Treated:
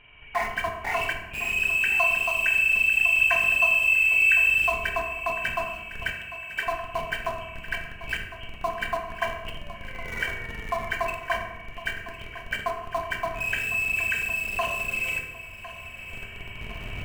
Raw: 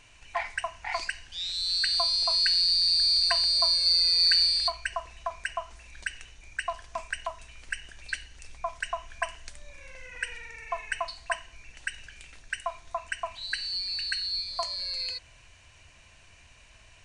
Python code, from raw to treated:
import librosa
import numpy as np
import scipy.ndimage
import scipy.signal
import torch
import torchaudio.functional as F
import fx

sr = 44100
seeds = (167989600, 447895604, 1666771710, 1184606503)

p1 = fx.freq_compress(x, sr, knee_hz=2200.0, ratio=4.0)
p2 = fx.recorder_agc(p1, sr, target_db=-19.0, rise_db_per_s=5.4, max_gain_db=30)
p3 = fx.schmitt(p2, sr, flips_db=-35.5)
p4 = p2 + (p3 * librosa.db_to_amplitude(-9.0))
p5 = fx.highpass(p4, sr, hz=450.0, slope=12, at=(6.12, 6.66))
p6 = p5 + fx.echo_feedback(p5, sr, ms=1056, feedback_pct=46, wet_db=-14.5, dry=0)
y = fx.rev_fdn(p6, sr, rt60_s=1.0, lf_ratio=1.55, hf_ratio=0.6, size_ms=14.0, drr_db=2.0)